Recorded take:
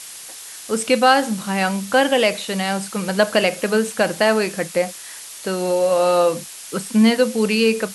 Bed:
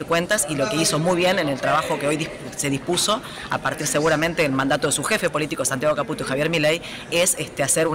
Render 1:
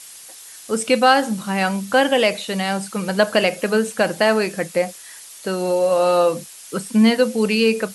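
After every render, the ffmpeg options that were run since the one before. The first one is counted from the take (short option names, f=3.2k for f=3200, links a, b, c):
-af "afftdn=nr=6:nf=-37"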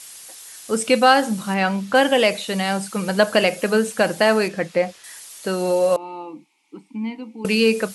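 -filter_complex "[0:a]asettb=1/sr,asplit=3[a][b][c];[a]atrim=end=1.544[d];[b]atrim=start=1.54:end=1.95,asetpts=PTS-STARTPTS,afade=t=in:d=0.004:c=qsin,afade=t=out:st=0.406:d=0.004:c=qsin,acrossover=split=5100[e][f];[f]acompressor=threshold=-51dB:ratio=4:attack=1:release=60[g];[e][g]amix=inputs=2:normalize=0[h];[c]atrim=start=1.946[i];[d][h]acrossfade=d=0.004:c1=hsin:c2=qsin[j];[j][i]acrossfade=d=0.004:c1=qsin:c2=hsin,asettb=1/sr,asplit=3[k][l][m];[k]atrim=end=4.484[n];[l]atrim=start=4.48:end=5.04,asetpts=PTS-STARTPTS,afade=t=in:d=0.004:c=qsin,afade=t=out:st=0.556:d=0.004:c=qsin,acrossover=split=5300[o][p];[p]acompressor=threshold=-56dB:ratio=4:attack=1:release=60[q];[o][q]amix=inputs=2:normalize=0[r];[m]atrim=start=5.036[s];[n][r]acrossfade=d=0.004:c1=hsin:c2=qsin[t];[t][s]acrossfade=d=0.004:c1=qsin:c2=hsin,asettb=1/sr,asplit=3[u][v][w];[u]atrim=end=5.964[x];[v]atrim=start=5.96:end=7.45,asetpts=PTS-STARTPTS,afade=t=in:d=0.004:c=qsin,afade=t=out:st=1.486:d=0.004:c=qsin,asplit=3[y][z][aa];[y]bandpass=f=300:t=q:w=8,volume=0dB[ab];[z]bandpass=f=870:t=q:w=8,volume=-6dB[ac];[aa]bandpass=f=2.24k:t=q:w=8,volume=-9dB[ad];[ab][ac][ad]amix=inputs=3:normalize=0[ae];[w]atrim=start=7.446[af];[x][ae]acrossfade=d=0.004:c1=hsin:c2=qsin[ag];[ag][af]acrossfade=d=0.004:c1=qsin:c2=hsin"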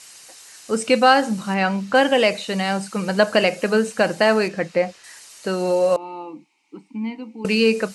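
-af "equalizer=f=11k:t=o:w=0.48:g=-11,bandreject=f=3.4k:w=10"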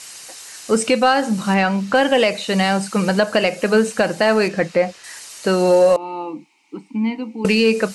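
-af "alimiter=limit=-11dB:level=0:latency=1:release=359,acontrast=73"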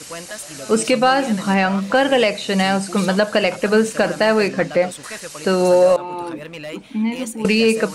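-filter_complex "[1:a]volume=-13dB[a];[0:a][a]amix=inputs=2:normalize=0"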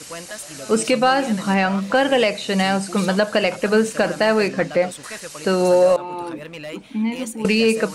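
-af "volume=-1.5dB"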